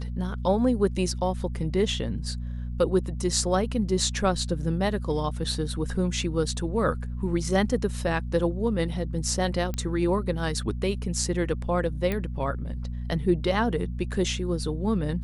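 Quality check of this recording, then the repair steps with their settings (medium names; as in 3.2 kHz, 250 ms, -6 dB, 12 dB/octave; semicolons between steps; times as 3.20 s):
hum 60 Hz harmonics 4 -32 dBFS
9.74 s: pop -17 dBFS
12.12 s: pop -15 dBFS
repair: de-click; de-hum 60 Hz, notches 4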